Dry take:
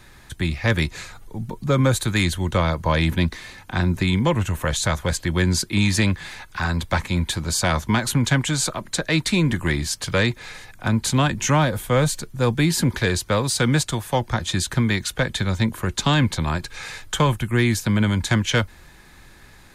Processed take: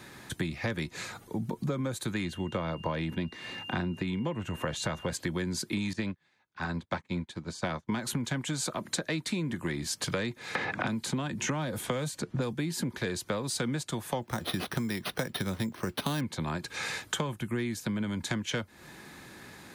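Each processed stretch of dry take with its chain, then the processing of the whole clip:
2.13–5.11 high shelf 5300 Hz -10.5 dB + whine 2800 Hz -41 dBFS
5.93–7.92 air absorption 69 m + upward expander 2.5:1, over -38 dBFS
10.55–12.53 low-pass opened by the level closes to 1700 Hz, open at -18 dBFS + three-band squash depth 100%
14.22–16.21 median filter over 3 samples + careless resampling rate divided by 6×, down none, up hold
whole clip: HPF 210 Hz 12 dB/oct; low shelf 350 Hz +9.5 dB; compressor 10:1, threshold -29 dBFS

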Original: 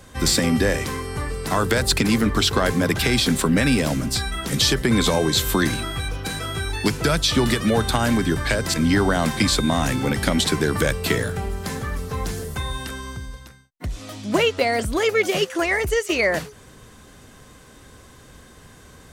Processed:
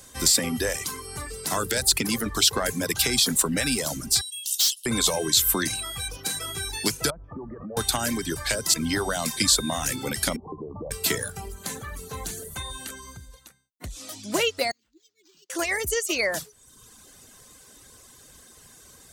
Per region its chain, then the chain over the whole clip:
4.21–4.86 brick-wall FIR high-pass 2600 Hz + hard clip -20.5 dBFS
7.1–7.77 inverse Chebyshev low-pass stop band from 3700 Hz, stop band 60 dB + compressor 10:1, threshold -24 dBFS
10.36–10.91 steep low-pass 1100 Hz 96 dB/oct + compressor 5:1, threshold -23 dBFS
11.52–13.96 high shelf 8100 Hz -4.5 dB + notch 5200 Hz, Q 5.5
14.71–15.5 EQ curve 150 Hz 0 dB, 330 Hz +12 dB, 490 Hz -13 dB, 990 Hz -27 dB, 3900 Hz +11 dB + flipped gate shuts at -22 dBFS, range -35 dB + decimation joined by straight lines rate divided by 4×
whole clip: tone controls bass -4 dB, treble +13 dB; reverb removal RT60 0.85 s; maximiser +1 dB; gain -6.5 dB

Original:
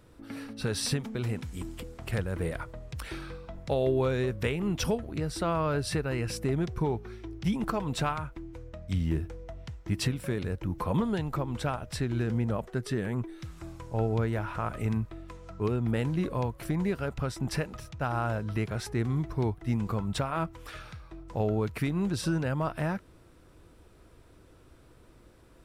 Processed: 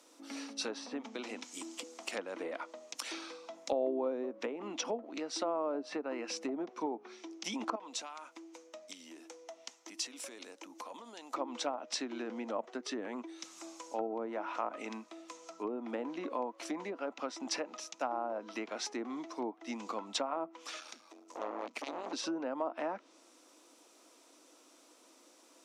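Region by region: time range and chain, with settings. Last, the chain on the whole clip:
7.75–11.34 low shelf 210 Hz -11.5 dB + compressor 12:1, threshold -39 dBFS
20.8–22.13 high shelf 11000 Hz +3.5 dB + hard clip -24.5 dBFS + core saturation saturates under 610 Hz
whole clip: steep high-pass 270 Hz 48 dB/oct; treble ducked by the level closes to 750 Hz, closed at -27.5 dBFS; fifteen-band EQ 400 Hz -11 dB, 1600 Hz -8 dB, 6300 Hz +12 dB; gain +2 dB

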